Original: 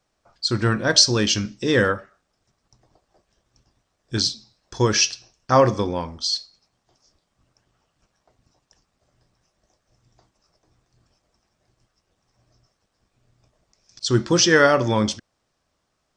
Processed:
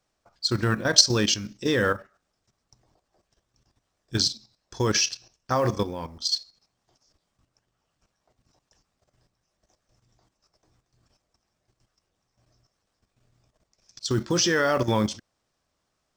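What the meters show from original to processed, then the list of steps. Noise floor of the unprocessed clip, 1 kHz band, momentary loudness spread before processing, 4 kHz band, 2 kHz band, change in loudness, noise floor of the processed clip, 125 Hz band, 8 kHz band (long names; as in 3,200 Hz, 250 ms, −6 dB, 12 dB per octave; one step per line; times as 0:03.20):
−74 dBFS, −6.0 dB, 12 LU, −3.0 dB, −5.5 dB, −4.5 dB, −78 dBFS, −4.5 dB, −3.0 dB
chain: high-shelf EQ 5,100 Hz +2.5 dB
output level in coarse steps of 11 dB
floating-point word with a short mantissa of 4 bits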